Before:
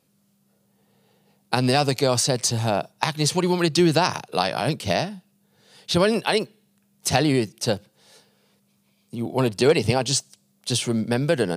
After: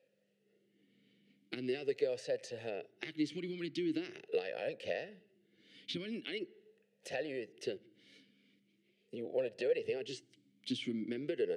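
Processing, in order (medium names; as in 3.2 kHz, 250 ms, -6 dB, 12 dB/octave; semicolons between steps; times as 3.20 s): compression 6:1, threshold -30 dBFS, peak gain reduction 17 dB; on a send at -22 dB: reverberation RT60 1.2 s, pre-delay 4 ms; on the sum: talking filter e-i 0.42 Hz; trim +6.5 dB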